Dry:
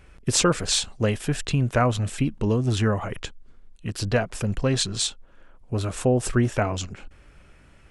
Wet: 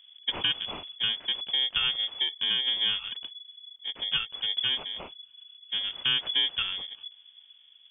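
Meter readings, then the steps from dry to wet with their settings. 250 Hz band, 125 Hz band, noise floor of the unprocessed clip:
−25.5 dB, −29.0 dB, −52 dBFS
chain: samples in bit-reversed order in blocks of 32 samples
low-pass that shuts in the quiet parts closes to 1,600 Hz, open at −22 dBFS
voice inversion scrambler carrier 3,400 Hz
level −5.5 dB

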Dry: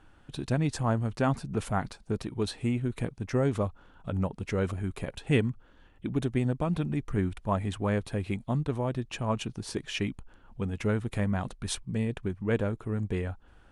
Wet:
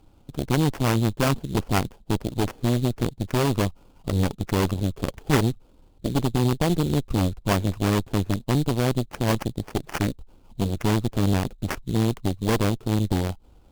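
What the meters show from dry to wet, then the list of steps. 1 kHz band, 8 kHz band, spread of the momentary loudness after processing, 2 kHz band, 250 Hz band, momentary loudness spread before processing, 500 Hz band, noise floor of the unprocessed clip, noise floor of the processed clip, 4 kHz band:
+6.5 dB, +8.5 dB, 7 LU, +5.5 dB, +6.5 dB, 8 LU, +4.5 dB, −57 dBFS, −55 dBFS, +8.5 dB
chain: adaptive Wiener filter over 25 samples
sample-rate reduction 3,900 Hz, jitter 20%
harmonic generator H 6 −17 dB, 8 −10 dB, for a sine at −13 dBFS
level +4.5 dB

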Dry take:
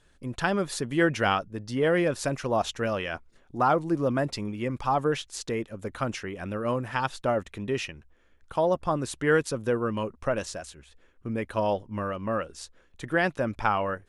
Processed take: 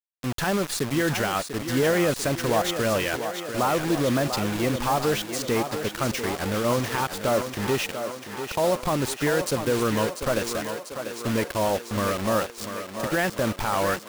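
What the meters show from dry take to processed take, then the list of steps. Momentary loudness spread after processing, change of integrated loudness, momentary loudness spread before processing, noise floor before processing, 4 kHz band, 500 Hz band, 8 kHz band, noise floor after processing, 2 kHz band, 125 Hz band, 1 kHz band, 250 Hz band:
6 LU, +2.5 dB, 11 LU, −61 dBFS, +7.5 dB, +2.5 dB, +9.0 dB, −41 dBFS, +2.5 dB, +3.5 dB, +1.5 dB, +3.5 dB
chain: brickwall limiter −20 dBFS, peak gain reduction 11 dB
bit-depth reduction 6 bits, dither none
feedback echo with a high-pass in the loop 693 ms, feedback 66%, high-pass 200 Hz, level −8 dB
level +5 dB

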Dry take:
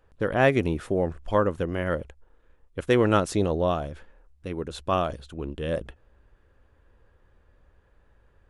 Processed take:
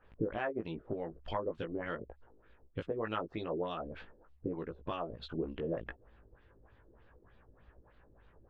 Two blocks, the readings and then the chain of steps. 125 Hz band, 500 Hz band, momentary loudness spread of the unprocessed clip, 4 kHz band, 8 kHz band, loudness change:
−15.5 dB, −13.0 dB, 15 LU, −11.5 dB, below −35 dB, −13.5 dB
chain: high-shelf EQ 8,800 Hz −11 dB
harmonic and percussive parts rebalanced harmonic −12 dB
downward compressor 6 to 1, threshold −40 dBFS, peak gain reduction 20 dB
auto-filter low-pass sine 3.3 Hz 350–4,100 Hz
double-tracking delay 18 ms −4 dB
level +2 dB

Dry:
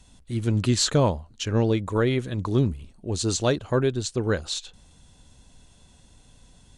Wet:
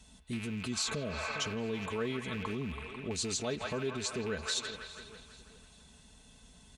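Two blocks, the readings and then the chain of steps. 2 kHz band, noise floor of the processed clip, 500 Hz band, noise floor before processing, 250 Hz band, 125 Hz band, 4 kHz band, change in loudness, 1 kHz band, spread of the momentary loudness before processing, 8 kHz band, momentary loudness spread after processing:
−3.5 dB, −59 dBFS, −12.0 dB, −55 dBFS, −12.0 dB, −17.0 dB, −6.5 dB, −11.0 dB, −9.0 dB, 10 LU, −7.0 dB, 12 LU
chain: loose part that buzzes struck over −29 dBFS, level −26 dBFS
repeating echo 410 ms, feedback 45%, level −22.5 dB
healed spectral selection 0:00.75–0:01.49, 670–2,700 Hz after
low-shelf EQ 230 Hz +4.5 dB
delay with a band-pass on its return 165 ms, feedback 62%, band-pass 1,600 Hz, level −7 dB
downward compressor, threshold −22 dBFS, peak gain reduction 9 dB
brickwall limiter −21.5 dBFS, peak gain reduction 8.5 dB
high-pass filter 45 Hz
low-shelf EQ 490 Hz −5 dB
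comb filter 4.6 ms, depth 56%
level −2.5 dB

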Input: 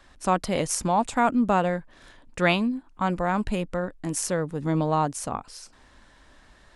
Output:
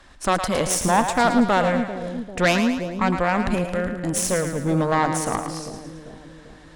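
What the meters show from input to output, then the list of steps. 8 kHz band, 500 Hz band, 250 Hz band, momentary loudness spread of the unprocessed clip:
+5.5 dB, +4.5 dB, +4.0 dB, 11 LU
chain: harmonic generator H 5 −16 dB, 6 −14 dB, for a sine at −7.5 dBFS
echo with a time of its own for lows and highs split 560 Hz, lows 394 ms, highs 110 ms, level −7.5 dB

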